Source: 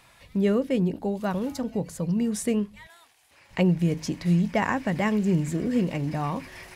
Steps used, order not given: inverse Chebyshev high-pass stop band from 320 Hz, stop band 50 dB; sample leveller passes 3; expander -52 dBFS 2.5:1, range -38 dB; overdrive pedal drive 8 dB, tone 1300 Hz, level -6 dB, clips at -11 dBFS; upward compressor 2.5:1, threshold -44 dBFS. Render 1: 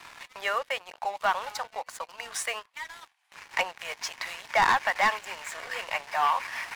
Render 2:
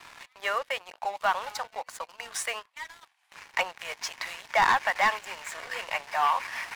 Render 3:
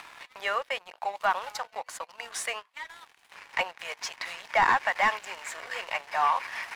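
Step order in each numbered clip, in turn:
expander > inverse Chebyshev high-pass > upward compressor > overdrive pedal > sample leveller; upward compressor > overdrive pedal > expander > inverse Chebyshev high-pass > sample leveller; inverse Chebyshev high-pass > upward compressor > sample leveller > overdrive pedal > expander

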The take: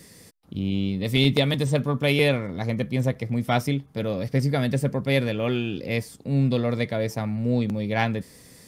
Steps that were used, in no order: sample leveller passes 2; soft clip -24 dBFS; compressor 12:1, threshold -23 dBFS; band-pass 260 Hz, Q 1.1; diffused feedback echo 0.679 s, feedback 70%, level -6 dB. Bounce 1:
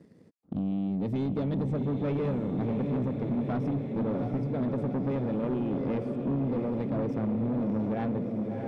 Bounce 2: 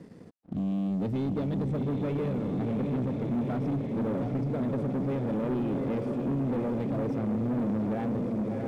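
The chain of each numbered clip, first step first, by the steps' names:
sample leveller > band-pass > compressor > diffused feedback echo > soft clip; compressor > diffused feedback echo > soft clip > band-pass > sample leveller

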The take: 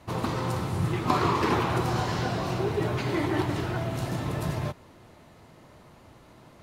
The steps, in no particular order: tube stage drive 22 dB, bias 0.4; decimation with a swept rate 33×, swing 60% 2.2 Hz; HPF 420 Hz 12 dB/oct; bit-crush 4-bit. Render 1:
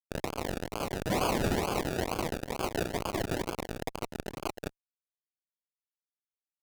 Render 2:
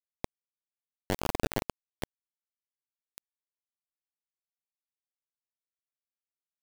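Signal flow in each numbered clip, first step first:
bit-crush > HPF > decimation with a swept rate > tube stage; HPF > decimation with a swept rate > tube stage > bit-crush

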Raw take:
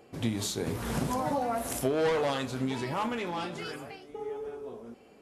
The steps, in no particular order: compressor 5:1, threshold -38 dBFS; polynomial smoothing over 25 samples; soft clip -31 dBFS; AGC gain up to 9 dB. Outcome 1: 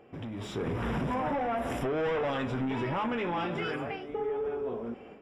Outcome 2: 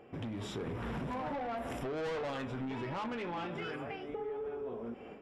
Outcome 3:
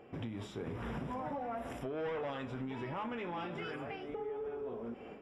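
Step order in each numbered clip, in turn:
soft clip > polynomial smoothing > compressor > AGC; polynomial smoothing > soft clip > AGC > compressor; AGC > compressor > soft clip > polynomial smoothing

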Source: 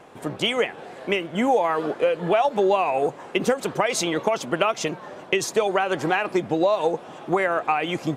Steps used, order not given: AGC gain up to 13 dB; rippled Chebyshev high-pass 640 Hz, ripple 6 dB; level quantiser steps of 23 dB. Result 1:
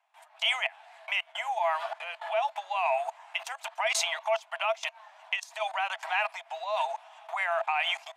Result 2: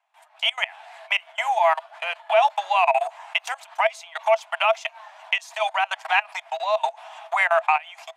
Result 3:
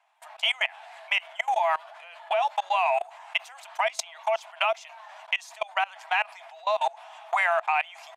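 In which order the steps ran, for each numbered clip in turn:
AGC > level quantiser > rippled Chebyshev high-pass; level quantiser > AGC > rippled Chebyshev high-pass; AGC > rippled Chebyshev high-pass > level quantiser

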